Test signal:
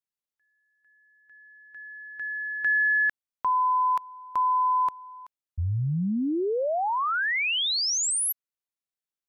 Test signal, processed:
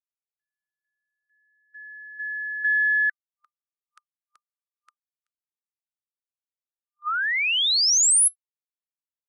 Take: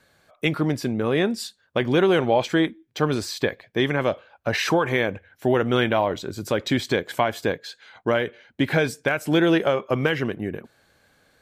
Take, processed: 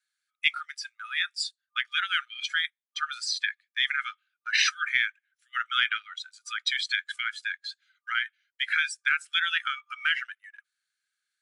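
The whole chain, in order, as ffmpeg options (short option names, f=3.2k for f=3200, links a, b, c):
-af "afftdn=nr=17:nf=-31,afftfilt=real='re*between(b*sr/4096,1200,11000)':imag='im*between(b*sr/4096,1200,11000)':win_size=4096:overlap=0.75,highshelf=f=3.8k:g=10,aeval=exprs='0.447*(cos(1*acos(clip(val(0)/0.447,-1,1)))-cos(1*PI/2))+0.0112*(cos(2*acos(clip(val(0)/0.447,-1,1)))-cos(2*PI/2))':c=same,agate=range=-7dB:threshold=-54dB:ratio=16:release=28:detection=rms"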